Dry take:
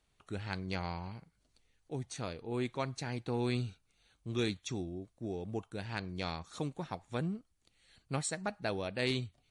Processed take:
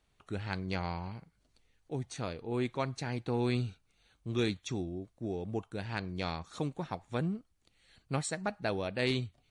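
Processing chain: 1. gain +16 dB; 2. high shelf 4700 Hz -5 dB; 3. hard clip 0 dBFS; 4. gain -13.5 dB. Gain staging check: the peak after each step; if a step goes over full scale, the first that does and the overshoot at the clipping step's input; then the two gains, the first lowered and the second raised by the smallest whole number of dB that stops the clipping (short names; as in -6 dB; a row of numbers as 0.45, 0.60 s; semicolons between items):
-4.5, -5.0, -5.0, -18.5 dBFS; no overload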